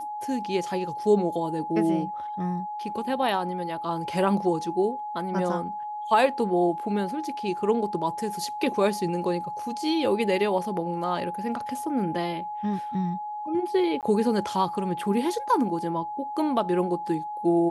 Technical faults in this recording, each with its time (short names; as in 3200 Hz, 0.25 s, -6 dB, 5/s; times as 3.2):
tone 840 Hz -31 dBFS
14.01–14.03 gap 18 ms